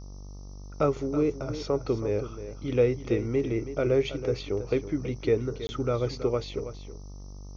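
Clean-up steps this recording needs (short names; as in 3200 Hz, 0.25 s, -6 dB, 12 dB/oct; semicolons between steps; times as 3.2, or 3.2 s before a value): de-hum 48.6 Hz, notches 26; interpolate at 5.67, 20 ms; noise print and reduce 30 dB; inverse comb 0.325 s -12 dB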